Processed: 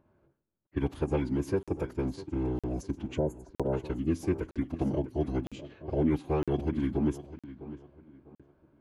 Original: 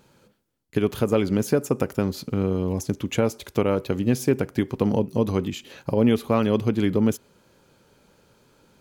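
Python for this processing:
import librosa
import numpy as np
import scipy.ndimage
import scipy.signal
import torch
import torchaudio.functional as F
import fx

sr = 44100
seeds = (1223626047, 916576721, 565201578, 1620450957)

y = fx.spec_erase(x, sr, start_s=3.18, length_s=0.55, low_hz=1500.0, high_hz=6300.0)
y = fx.echo_feedback(y, sr, ms=652, feedback_pct=33, wet_db=-15)
y = fx.env_lowpass(y, sr, base_hz=1500.0, full_db=-21.0)
y = fx.high_shelf(y, sr, hz=2100.0, db=-8.0)
y = fx.pitch_keep_formants(y, sr, semitones=-7.0)
y = fx.buffer_crackle(y, sr, first_s=0.67, period_s=0.96, block=2048, kind='zero')
y = y * librosa.db_to_amplitude(-7.0)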